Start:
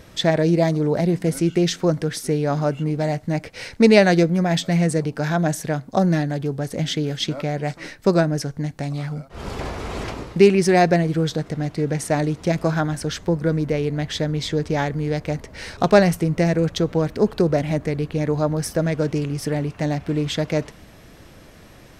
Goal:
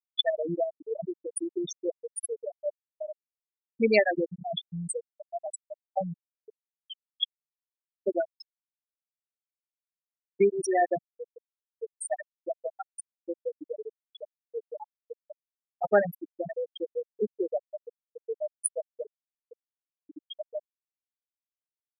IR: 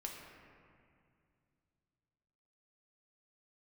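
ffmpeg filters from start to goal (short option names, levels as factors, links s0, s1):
-af "aeval=exprs='val(0)+0.0282*sin(2*PI*1800*n/s)':c=same,aemphasis=mode=production:type=riaa,afftfilt=real='re*gte(hypot(re,im),0.562)':imag='im*gte(hypot(re,im),0.562)':win_size=1024:overlap=0.75,volume=0.562"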